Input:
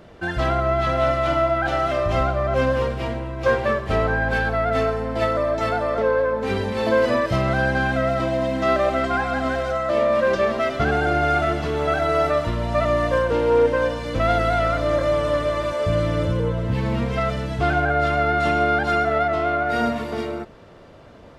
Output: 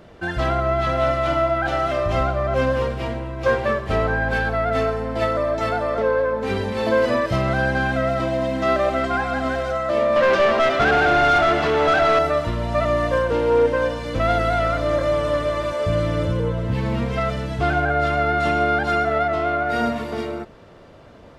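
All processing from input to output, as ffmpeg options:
-filter_complex "[0:a]asettb=1/sr,asplit=3[a][b][c];[a]atrim=end=10.164[d];[b]atrim=start=10.16:end=12.19,asetpts=PTS-STARTPTS,afade=t=in:d=0.004:c=qsin,afade=t=out:st=2.026:d=0.004:c=qsin,acrusher=bits=8:mix=0:aa=0.5,asplit=2[e][f];[f]highpass=f=720:p=1,volume=18dB,asoftclip=type=tanh:threshold=-9dB[g];[e][g]amix=inputs=2:normalize=0,lowpass=f=3.2k:p=1,volume=-6dB,highshelf=f=6.7k:g=-4.5[h];[c]atrim=start=12.186[i];[d][h]acrossfade=d=0.004:c1=hsin:c2=qsin[j];[j][i]acrossfade=d=0.004:c1=qsin:c2=hsin"

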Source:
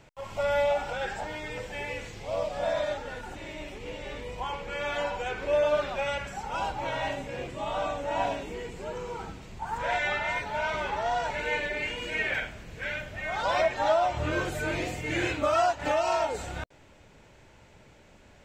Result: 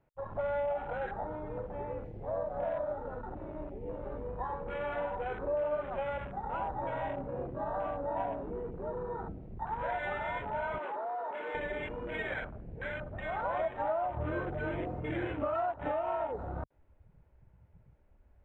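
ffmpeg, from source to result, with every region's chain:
-filter_complex "[0:a]asettb=1/sr,asplit=3[a][b][c];[a]atrim=end=10.784[d];[b]atrim=start=10.78:end=11.55,asetpts=PTS-STARTPTS,afade=t=in:d=0.004:c=qsin,afade=t=out:st=0.766:d=0.004:c=qsin,asoftclip=type=hard:threshold=-33dB,highpass=f=280:w=0.5412,highpass=f=280:w=1.3066[e];[c]atrim=start=11.546[f];[d][e]acrossfade=d=0.004:c1=hsin:c2=qsin[g];[g][f]acrossfade=d=0.004:c1=qsin:c2=hsin,lowpass=1.4k,afwtdn=0.00891,acompressor=threshold=-33dB:ratio=2.5"

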